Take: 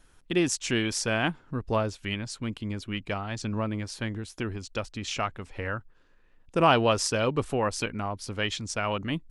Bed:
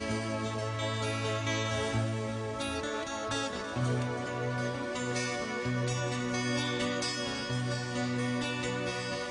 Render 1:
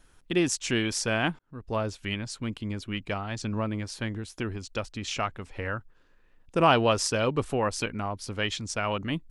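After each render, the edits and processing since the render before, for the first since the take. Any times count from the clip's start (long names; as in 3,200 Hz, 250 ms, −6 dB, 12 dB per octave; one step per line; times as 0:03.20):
0:01.39–0:01.92: fade in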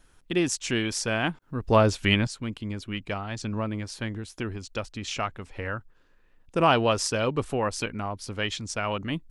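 0:01.42–0:02.27: clip gain +10 dB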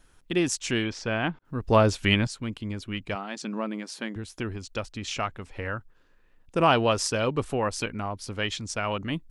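0:00.84–0:01.45: high-frequency loss of the air 170 metres
0:03.15–0:04.16: linear-phase brick-wall high-pass 160 Hz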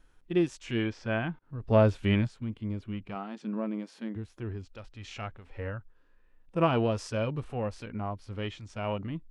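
harmonic and percussive parts rebalanced percussive −15 dB
high-shelf EQ 4,700 Hz −10.5 dB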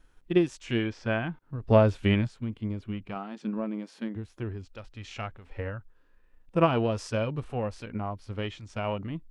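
transient designer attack +5 dB, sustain +1 dB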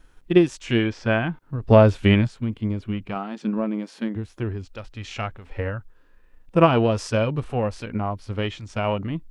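level +7 dB
brickwall limiter −3 dBFS, peak gain reduction 2 dB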